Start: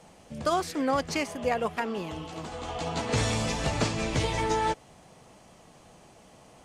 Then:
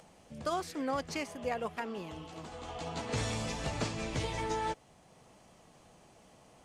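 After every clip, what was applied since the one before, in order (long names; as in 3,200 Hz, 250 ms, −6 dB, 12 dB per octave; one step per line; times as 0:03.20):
upward compression, threshold −47 dBFS
level −7.5 dB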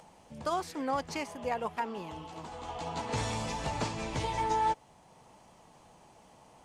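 parametric band 910 Hz +9 dB 0.36 octaves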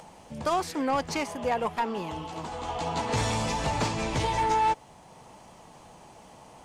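soft clipping −26.5 dBFS, distortion −16 dB
level +7.5 dB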